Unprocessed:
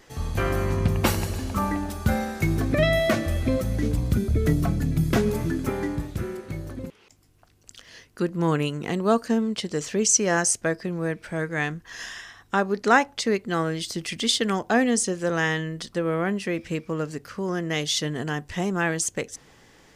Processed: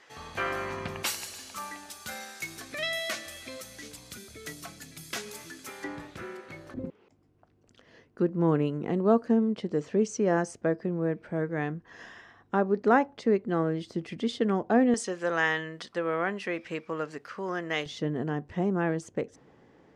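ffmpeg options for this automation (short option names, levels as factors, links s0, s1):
-af "asetnsamples=n=441:p=0,asendcmd='1.03 bandpass f 6100;5.84 bandpass f 1700;6.74 bandpass f 330;14.94 bandpass f 1200;17.86 bandpass f 320',bandpass=f=1800:t=q:w=0.56:csg=0"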